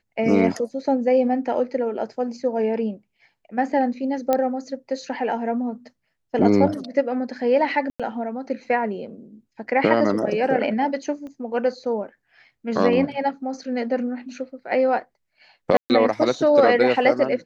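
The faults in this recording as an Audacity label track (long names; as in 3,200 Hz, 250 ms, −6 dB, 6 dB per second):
4.330000	4.330000	click −8 dBFS
7.900000	8.000000	drop-out 96 ms
11.270000	11.270000	click −28 dBFS
15.770000	15.900000	drop-out 129 ms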